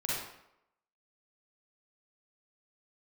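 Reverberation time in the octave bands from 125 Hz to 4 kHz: 0.60, 0.70, 0.80, 0.80, 0.70, 0.60 s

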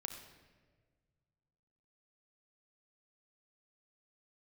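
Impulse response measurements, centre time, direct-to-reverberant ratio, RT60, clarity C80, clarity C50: 31 ms, 4.0 dB, 1.5 s, 7.5 dB, 6.5 dB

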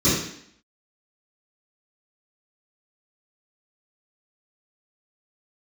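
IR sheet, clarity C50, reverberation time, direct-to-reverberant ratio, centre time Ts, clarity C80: 0.5 dB, 0.65 s, -17.0 dB, 62 ms, 5.0 dB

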